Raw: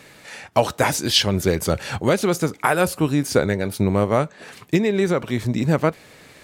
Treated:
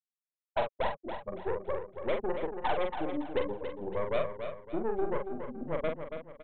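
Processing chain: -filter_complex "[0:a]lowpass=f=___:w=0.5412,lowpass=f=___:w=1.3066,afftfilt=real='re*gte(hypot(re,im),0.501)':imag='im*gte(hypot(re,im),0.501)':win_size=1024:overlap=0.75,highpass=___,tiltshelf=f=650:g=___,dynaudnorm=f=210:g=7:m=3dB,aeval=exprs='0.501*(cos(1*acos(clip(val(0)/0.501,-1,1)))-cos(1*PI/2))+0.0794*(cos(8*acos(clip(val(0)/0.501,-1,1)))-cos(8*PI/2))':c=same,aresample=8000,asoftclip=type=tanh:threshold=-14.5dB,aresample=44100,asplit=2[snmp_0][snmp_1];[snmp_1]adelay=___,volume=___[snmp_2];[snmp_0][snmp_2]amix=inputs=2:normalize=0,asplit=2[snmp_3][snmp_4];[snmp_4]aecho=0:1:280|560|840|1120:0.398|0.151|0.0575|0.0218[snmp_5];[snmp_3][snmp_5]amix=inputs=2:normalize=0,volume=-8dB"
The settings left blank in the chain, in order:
1200, 1200, 370, -7, 44, -5dB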